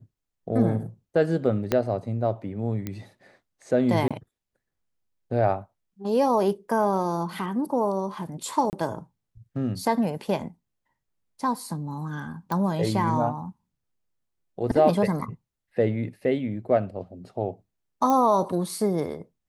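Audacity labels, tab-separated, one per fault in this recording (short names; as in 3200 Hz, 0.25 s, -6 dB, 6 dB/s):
1.720000	1.720000	pop -9 dBFS
2.870000	2.870000	pop -17 dBFS
4.080000	4.110000	gap 26 ms
8.700000	8.730000	gap 29 ms
12.520000	12.520000	pop -16 dBFS
18.100000	18.100000	pop -13 dBFS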